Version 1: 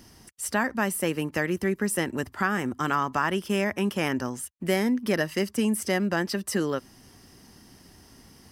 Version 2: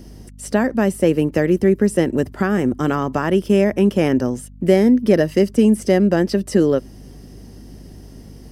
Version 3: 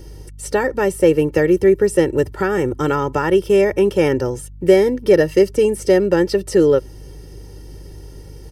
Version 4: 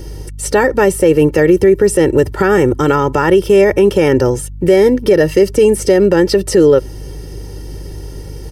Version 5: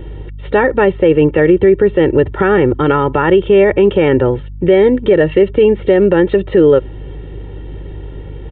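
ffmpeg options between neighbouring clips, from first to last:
ffmpeg -i in.wav -filter_complex "[0:a]acrossover=split=9300[link_01][link_02];[link_02]acompressor=threshold=-48dB:ratio=4:attack=1:release=60[link_03];[link_01][link_03]amix=inputs=2:normalize=0,aeval=exprs='val(0)+0.00316*(sin(2*PI*50*n/s)+sin(2*PI*2*50*n/s)/2+sin(2*PI*3*50*n/s)/3+sin(2*PI*4*50*n/s)/4+sin(2*PI*5*50*n/s)/5)':channel_layout=same,lowshelf=frequency=740:width_type=q:width=1.5:gain=8.5,volume=2dB" out.wav
ffmpeg -i in.wav -af "aecho=1:1:2.2:0.81" out.wav
ffmpeg -i in.wav -af "alimiter=level_in=10dB:limit=-1dB:release=50:level=0:latency=1,volume=-1dB" out.wav
ffmpeg -i in.wav -af "aresample=8000,aresample=44100" out.wav

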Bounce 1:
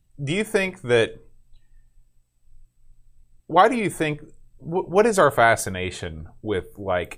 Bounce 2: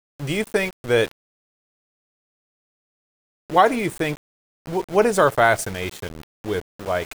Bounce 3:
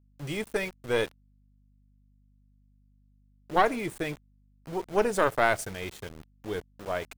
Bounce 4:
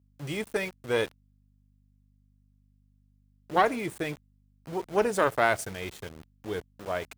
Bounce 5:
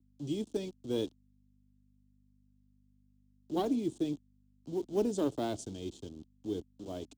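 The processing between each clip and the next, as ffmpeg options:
ffmpeg -i in.wav -af "aeval=exprs='val(0)*gte(abs(val(0)),0.0282)':channel_layout=same" out.wav
ffmpeg -i in.wav -af "aeval=exprs='val(0)+0.00224*(sin(2*PI*50*n/s)+sin(2*PI*2*50*n/s)/2+sin(2*PI*3*50*n/s)/3+sin(2*PI*4*50*n/s)/4+sin(2*PI*5*50*n/s)/5)':channel_layout=same,aeval=exprs='(tanh(1.78*val(0)+0.75)-tanh(0.75))/1.78':channel_layout=same,volume=-4dB" out.wav
ffmpeg -i in.wav -af "highpass=46" out.wav
ffmpeg -i in.wav -filter_complex "[0:a]firequalizer=gain_entry='entry(170,0);entry(280,11);entry(490,-6);entry(790,-9);entry(1300,-19);entry(2000,-25);entry(3200,-2);entry(4900,-3);entry(7100,0);entry(13000,-28)':delay=0.05:min_phase=1,acrossover=split=200|440|4400[link_01][link_02][link_03][link_04];[link_03]acrusher=bits=5:mode=log:mix=0:aa=0.000001[link_05];[link_01][link_02][link_05][link_04]amix=inputs=4:normalize=0,volume=-4.5dB" out.wav

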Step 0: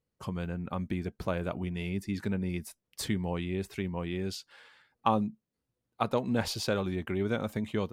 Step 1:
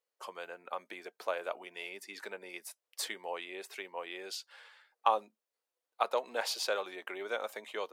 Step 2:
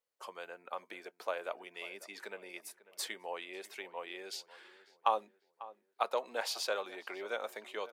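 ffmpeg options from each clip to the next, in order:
ffmpeg -i in.wav -af "highpass=frequency=500:width=0.5412,highpass=frequency=500:width=1.3066" out.wav
ffmpeg -i in.wav -filter_complex "[0:a]asplit=2[link_01][link_02];[link_02]adelay=545,lowpass=frequency=1900:poles=1,volume=-17dB,asplit=2[link_03][link_04];[link_04]adelay=545,lowpass=frequency=1900:poles=1,volume=0.45,asplit=2[link_05][link_06];[link_06]adelay=545,lowpass=frequency=1900:poles=1,volume=0.45,asplit=2[link_07][link_08];[link_08]adelay=545,lowpass=frequency=1900:poles=1,volume=0.45[link_09];[link_01][link_03][link_05][link_07][link_09]amix=inputs=5:normalize=0,volume=-2dB" out.wav

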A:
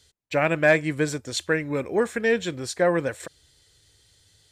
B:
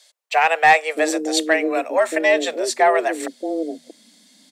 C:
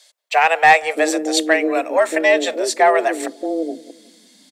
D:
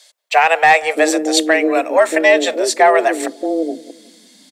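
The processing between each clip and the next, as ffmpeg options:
ffmpeg -i in.wav -filter_complex "[0:a]acrossover=split=320[link_01][link_02];[link_01]adelay=630[link_03];[link_03][link_02]amix=inputs=2:normalize=0,afreqshift=160,acontrast=87" out.wav
ffmpeg -i in.wav -filter_complex "[0:a]asplit=2[link_01][link_02];[link_02]adelay=181,lowpass=frequency=860:poles=1,volume=-18dB,asplit=2[link_03][link_04];[link_04]adelay=181,lowpass=frequency=860:poles=1,volume=0.44,asplit=2[link_05][link_06];[link_06]adelay=181,lowpass=frequency=860:poles=1,volume=0.44,asplit=2[link_07][link_08];[link_08]adelay=181,lowpass=frequency=860:poles=1,volume=0.44[link_09];[link_01][link_03][link_05][link_07][link_09]amix=inputs=5:normalize=0,volume=2dB" out.wav
ffmpeg -i in.wav -af "alimiter=level_in=4.5dB:limit=-1dB:release=50:level=0:latency=1,volume=-1dB" out.wav

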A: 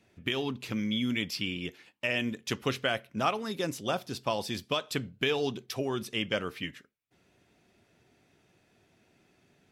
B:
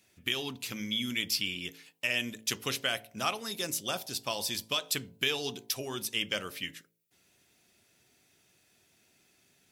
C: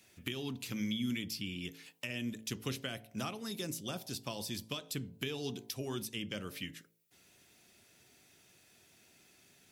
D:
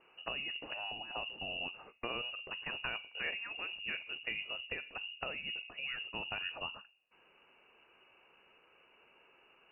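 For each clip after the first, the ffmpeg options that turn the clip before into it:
ffmpeg -i in.wav -af "bandreject=frequency=54.91:width_type=h:width=4,bandreject=frequency=109.82:width_type=h:width=4,bandreject=frequency=164.73:width_type=h:width=4,bandreject=frequency=219.64:width_type=h:width=4,bandreject=frequency=274.55:width_type=h:width=4,bandreject=frequency=329.46:width_type=h:width=4,bandreject=frequency=384.37:width_type=h:width=4,bandreject=frequency=439.28:width_type=h:width=4,bandreject=frequency=494.19:width_type=h:width=4,bandreject=frequency=549.1:width_type=h:width=4,bandreject=frequency=604.01:width_type=h:width=4,bandreject=frequency=658.92:width_type=h:width=4,bandreject=frequency=713.83:width_type=h:width=4,bandreject=frequency=768.74:width_type=h:width=4,bandreject=frequency=823.65:width_type=h:width=4,bandreject=frequency=878.56:width_type=h:width=4,bandreject=frequency=933.47:width_type=h:width=4,bandreject=frequency=988.38:width_type=h:width=4,crystalizer=i=5.5:c=0,volume=-6.5dB" out.wav
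ffmpeg -i in.wav -filter_complex "[0:a]acrossover=split=330[link_01][link_02];[link_02]acompressor=threshold=-47dB:ratio=3[link_03];[link_01][link_03]amix=inputs=2:normalize=0,volume=3dB" out.wav
ffmpeg -i in.wav -af "afftfilt=real='re*lt(hypot(re,im),0.0794)':imag='im*lt(hypot(re,im),0.0794)':win_size=1024:overlap=0.75,bandreject=frequency=49.06:width_type=h:width=4,bandreject=frequency=98.12:width_type=h:width=4,bandreject=frequency=147.18:width_type=h:width=4,bandreject=frequency=196.24:width_type=h:width=4,bandreject=frequency=245.3:width_type=h:width=4,bandreject=frequency=294.36:width_type=h:width=4,bandreject=frequency=343.42:width_type=h:width=4,bandreject=frequency=392.48:width_type=h:width=4,bandreject=frequency=441.54:width_type=h:width=4,bandreject=frequency=490.6:width_type=h:width=4,bandreject=frequency=539.66:width_type=h:width=4,bandreject=frequency=588.72:width_type=h:width=4,bandreject=frequency=637.78:width_type=h:width=4,bandreject=frequency=686.84:width_type=h:width=4,lowpass=frequency=2600:width_type=q:width=0.5098,lowpass=frequency=2600:width_type=q:width=0.6013,lowpass=frequency=2600:width_type=q:width=0.9,lowpass=frequency=2600:width_type=q:width=2.563,afreqshift=-3000,volume=3.5dB" out.wav

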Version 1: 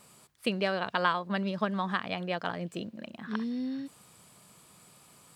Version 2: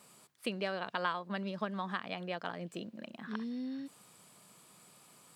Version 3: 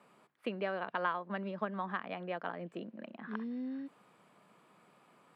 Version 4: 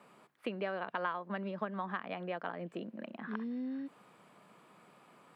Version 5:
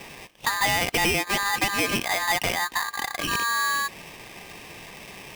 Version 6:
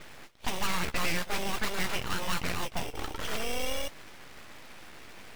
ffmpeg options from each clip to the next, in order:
ffmpeg -i in.wav -filter_complex "[0:a]highpass=150,asplit=2[link_01][link_02];[link_02]acompressor=threshold=-38dB:ratio=6,volume=0dB[link_03];[link_01][link_03]amix=inputs=2:normalize=0,volume=-8.5dB" out.wav
ffmpeg -i in.wav -filter_complex "[0:a]acrossover=split=170 2600:gain=0.251 1 0.0794[link_01][link_02][link_03];[link_01][link_02][link_03]amix=inputs=3:normalize=0,volume=1dB" out.wav
ffmpeg -i in.wav -af "acompressor=threshold=-44dB:ratio=1.5,volume=3.5dB" out.wav
ffmpeg -i in.wav -filter_complex "[0:a]asplit=2[link_01][link_02];[link_02]highpass=frequency=720:poles=1,volume=21dB,asoftclip=type=tanh:threshold=-20dB[link_03];[link_01][link_03]amix=inputs=2:normalize=0,lowpass=frequency=1500:poles=1,volume=-6dB,aeval=exprs='val(0)*sgn(sin(2*PI*1400*n/s))':channel_layout=same,volume=8dB" out.wav
ffmpeg -i in.wav -af "flanger=delay=7.3:depth=9.1:regen=-38:speed=1.5:shape=triangular,aeval=exprs='abs(val(0))':channel_layout=same" out.wav

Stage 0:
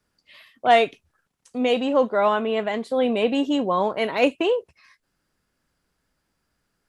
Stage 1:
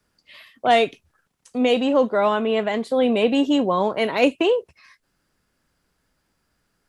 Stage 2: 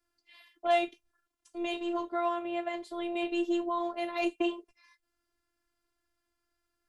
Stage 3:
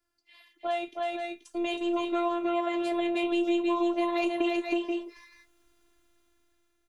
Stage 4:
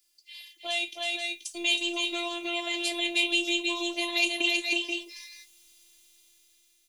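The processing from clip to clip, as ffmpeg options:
ffmpeg -i in.wav -filter_complex "[0:a]acrossover=split=450|3000[link_01][link_02][link_03];[link_02]acompressor=threshold=-29dB:ratio=1.5[link_04];[link_01][link_04][link_03]amix=inputs=3:normalize=0,volume=3.5dB" out.wav
ffmpeg -i in.wav -af "afftfilt=real='hypot(re,im)*cos(PI*b)':imag='0':win_size=512:overlap=0.75,volume=-8dB" out.wav
ffmpeg -i in.wav -filter_complex "[0:a]dynaudnorm=framelen=540:gausssize=5:maxgain=13dB,asplit=2[link_01][link_02];[link_02]aecho=0:1:319|481|496:0.668|0.335|0.188[link_03];[link_01][link_03]amix=inputs=2:normalize=0,acompressor=threshold=-30dB:ratio=2.5" out.wav
ffmpeg -i in.wav -af "aexciter=amount=14.3:drive=2.6:freq=2200,volume=-7.5dB" out.wav

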